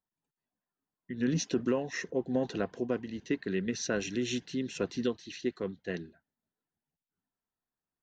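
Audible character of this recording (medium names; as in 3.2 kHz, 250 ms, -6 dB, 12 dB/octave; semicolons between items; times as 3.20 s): noise floor -94 dBFS; spectral tilt -5.0 dB/octave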